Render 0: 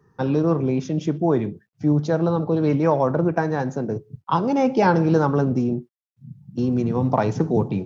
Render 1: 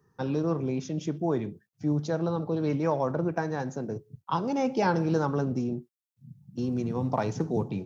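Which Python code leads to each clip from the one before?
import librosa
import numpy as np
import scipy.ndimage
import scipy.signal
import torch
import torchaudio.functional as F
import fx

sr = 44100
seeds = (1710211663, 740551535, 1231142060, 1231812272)

y = fx.high_shelf(x, sr, hz=4700.0, db=9.5)
y = F.gain(torch.from_numpy(y), -8.0).numpy()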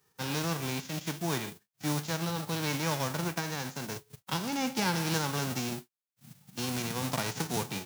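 y = fx.envelope_flatten(x, sr, power=0.3)
y = F.gain(torch.from_numpy(y), -4.5).numpy()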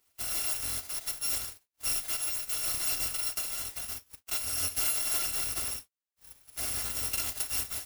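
y = fx.bit_reversed(x, sr, seeds[0], block=256)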